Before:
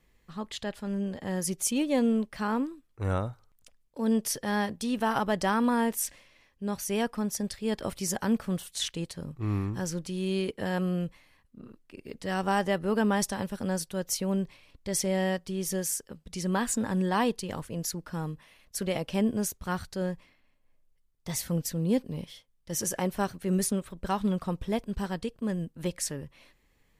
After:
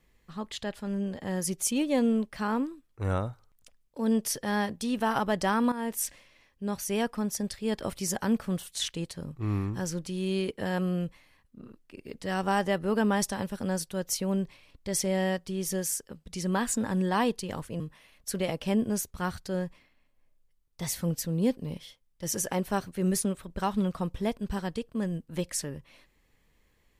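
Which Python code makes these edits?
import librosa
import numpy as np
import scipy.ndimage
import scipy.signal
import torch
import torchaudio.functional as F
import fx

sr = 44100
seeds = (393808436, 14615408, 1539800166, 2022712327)

y = fx.edit(x, sr, fx.fade_in_from(start_s=5.72, length_s=0.3, floor_db=-14.0),
    fx.cut(start_s=17.8, length_s=0.47), tone=tone)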